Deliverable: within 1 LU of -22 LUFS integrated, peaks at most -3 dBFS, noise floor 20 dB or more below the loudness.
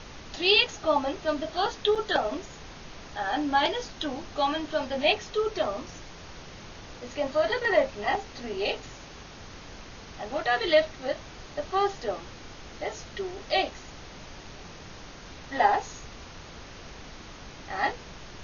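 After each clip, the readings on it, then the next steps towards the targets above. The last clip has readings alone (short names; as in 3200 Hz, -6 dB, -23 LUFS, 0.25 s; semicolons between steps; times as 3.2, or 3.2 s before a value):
dropouts 1; longest dropout 5.4 ms; noise floor -45 dBFS; noise floor target -48 dBFS; loudness -27.5 LUFS; peak -6.5 dBFS; loudness target -22.0 LUFS
-> interpolate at 1.95, 5.4 ms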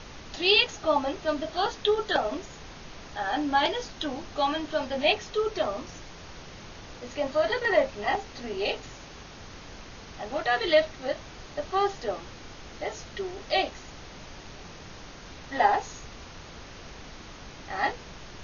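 dropouts 0; noise floor -45 dBFS; noise floor target -48 dBFS
-> noise print and reduce 6 dB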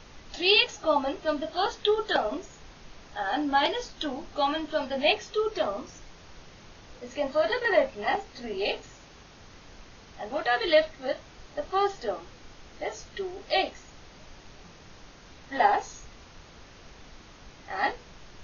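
noise floor -51 dBFS; loudness -27.5 LUFS; peak -7.0 dBFS; loudness target -22.0 LUFS
-> gain +5.5 dB; limiter -3 dBFS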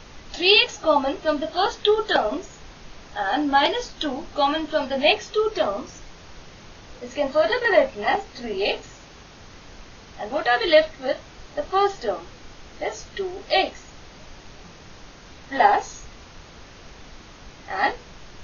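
loudness -22.5 LUFS; peak -3.0 dBFS; noise floor -46 dBFS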